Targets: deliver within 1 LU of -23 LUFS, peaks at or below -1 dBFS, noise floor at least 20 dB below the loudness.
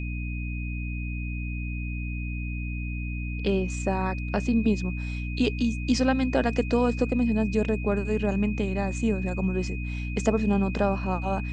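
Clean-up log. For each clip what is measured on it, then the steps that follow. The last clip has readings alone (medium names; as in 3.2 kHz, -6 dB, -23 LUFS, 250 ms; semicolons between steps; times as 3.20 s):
hum 60 Hz; highest harmonic 300 Hz; hum level -29 dBFS; steady tone 2.5 kHz; tone level -39 dBFS; loudness -27.5 LUFS; peak level -9.0 dBFS; loudness target -23.0 LUFS
-> de-hum 60 Hz, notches 5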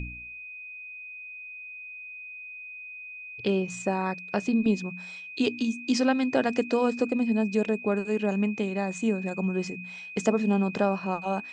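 hum not found; steady tone 2.5 kHz; tone level -39 dBFS
-> band-stop 2.5 kHz, Q 30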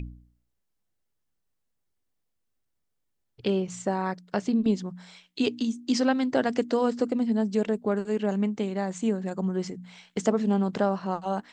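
steady tone not found; loudness -27.5 LUFS; peak level -10.0 dBFS; loudness target -23.0 LUFS
-> trim +4.5 dB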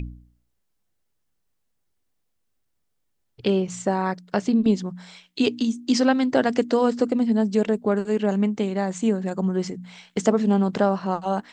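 loudness -23.0 LUFS; peak level -5.5 dBFS; noise floor -73 dBFS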